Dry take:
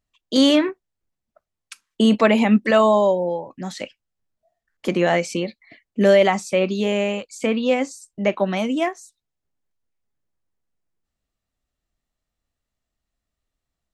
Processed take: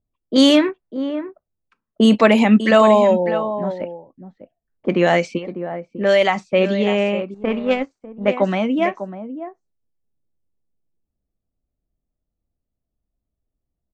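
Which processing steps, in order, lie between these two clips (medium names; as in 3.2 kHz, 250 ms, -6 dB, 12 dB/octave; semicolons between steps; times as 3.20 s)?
5.37–6.36 s: peaking EQ 250 Hz -15 dB -> -7.5 dB 2.2 oct; on a send: delay 599 ms -11 dB; 7.34–8.28 s: on the sum: power-law waveshaper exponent 1.4; level-controlled noise filter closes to 500 Hz, open at -12 dBFS; trim +3 dB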